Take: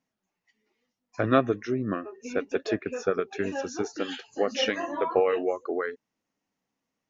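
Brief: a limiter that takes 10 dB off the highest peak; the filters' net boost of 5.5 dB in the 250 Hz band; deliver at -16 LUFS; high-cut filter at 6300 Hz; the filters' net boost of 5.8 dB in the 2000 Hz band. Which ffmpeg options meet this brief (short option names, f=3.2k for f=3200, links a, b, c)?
-af "lowpass=6.3k,equalizer=f=250:t=o:g=6.5,equalizer=f=2k:t=o:g=7.5,volume=11.5dB,alimiter=limit=-2dB:level=0:latency=1"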